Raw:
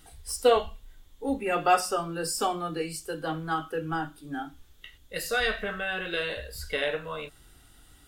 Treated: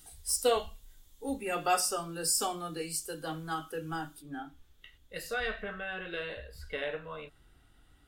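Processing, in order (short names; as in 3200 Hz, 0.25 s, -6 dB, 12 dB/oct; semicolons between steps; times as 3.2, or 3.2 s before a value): tone controls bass +1 dB, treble +11 dB, from 4.21 s treble -3 dB, from 5.33 s treble -10 dB; gain -6.5 dB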